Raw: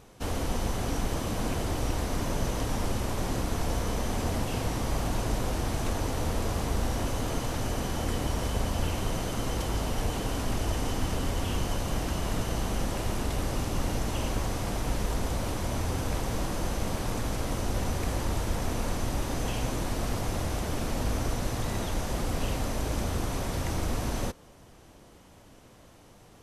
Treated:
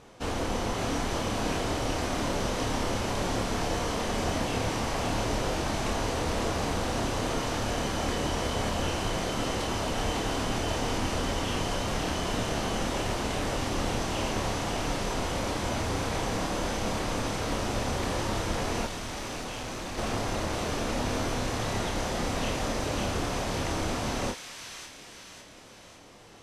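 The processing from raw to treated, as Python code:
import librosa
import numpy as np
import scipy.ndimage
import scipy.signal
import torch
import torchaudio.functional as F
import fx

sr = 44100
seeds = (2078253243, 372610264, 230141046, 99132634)

p1 = fx.low_shelf(x, sr, hz=170.0, db=-9.0)
p2 = fx.doubler(p1, sr, ms=28.0, db=-4)
p3 = fx.clip_hard(p2, sr, threshold_db=-37.5, at=(18.86, 19.98))
p4 = fx.air_absorb(p3, sr, metres=56.0)
p5 = p4 + fx.echo_wet_highpass(p4, sr, ms=552, feedback_pct=50, hz=2100.0, wet_db=-3.0, dry=0)
y = p5 * 10.0 ** (3.0 / 20.0)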